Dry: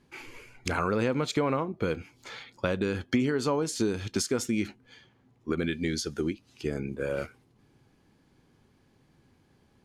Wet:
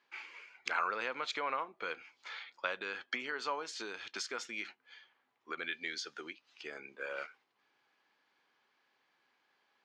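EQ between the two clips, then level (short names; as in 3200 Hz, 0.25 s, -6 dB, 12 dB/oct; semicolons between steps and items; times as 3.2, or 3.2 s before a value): HPF 1100 Hz 12 dB/oct; air absorption 170 m; +1.0 dB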